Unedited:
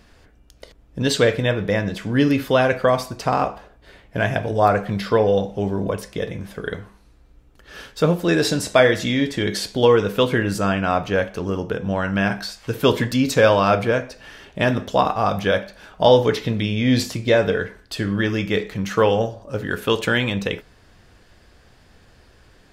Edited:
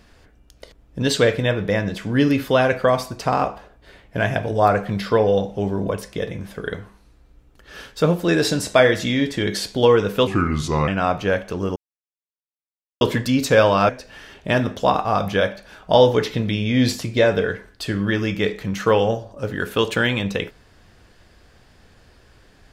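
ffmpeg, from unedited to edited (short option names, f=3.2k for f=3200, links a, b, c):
-filter_complex "[0:a]asplit=6[a][b][c][d][e][f];[a]atrim=end=10.274[g];[b]atrim=start=10.27:end=10.74,asetpts=PTS-STARTPTS,asetrate=33957,aresample=44100,atrim=end_sample=26918,asetpts=PTS-STARTPTS[h];[c]atrim=start=10.736:end=11.62,asetpts=PTS-STARTPTS,afade=t=out:st=0.88:d=0.004:c=hsin[i];[d]atrim=start=11.62:end=12.87,asetpts=PTS-STARTPTS,volume=0[j];[e]atrim=start=12.87:end=13.752,asetpts=PTS-STARTPTS,afade=t=in:d=0.004:c=hsin[k];[f]atrim=start=13.998[l];[g][h]acrossfade=d=0.004:c1=hsin:c2=hsin[m];[i][j][k]concat=n=3:v=0:a=1[n];[m][n]acrossfade=d=0.004:c1=hsin:c2=hsin[o];[o][l]acrossfade=d=0.004:c1=hsin:c2=hsin"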